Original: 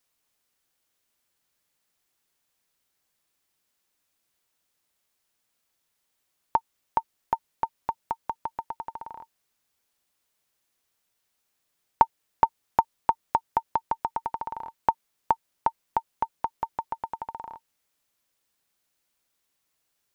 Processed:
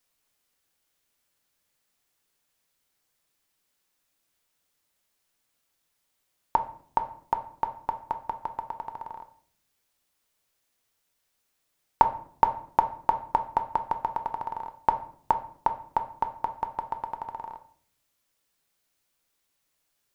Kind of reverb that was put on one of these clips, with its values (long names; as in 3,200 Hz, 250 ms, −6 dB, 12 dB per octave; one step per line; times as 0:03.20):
rectangular room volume 73 cubic metres, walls mixed, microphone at 0.33 metres